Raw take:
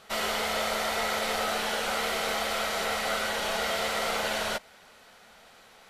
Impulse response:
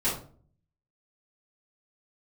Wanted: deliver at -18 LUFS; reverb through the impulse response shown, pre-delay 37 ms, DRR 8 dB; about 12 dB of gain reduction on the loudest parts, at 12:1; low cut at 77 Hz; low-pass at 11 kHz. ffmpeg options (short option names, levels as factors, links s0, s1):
-filter_complex "[0:a]highpass=77,lowpass=11000,acompressor=threshold=0.0126:ratio=12,asplit=2[s0][s1];[1:a]atrim=start_sample=2205,adelay=37[s2];[s1][s2]afir=irnorm=-1:irlink=0,volume=0.133[s3];[s0][s3]amix=inputs=2:normalize=0,volume=11.9"